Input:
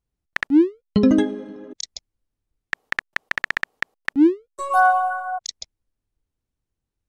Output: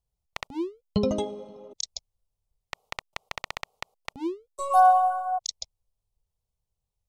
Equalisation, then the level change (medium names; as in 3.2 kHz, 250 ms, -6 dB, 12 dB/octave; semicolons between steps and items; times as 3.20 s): static phaser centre 700 Hz, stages 4; 0.0 dB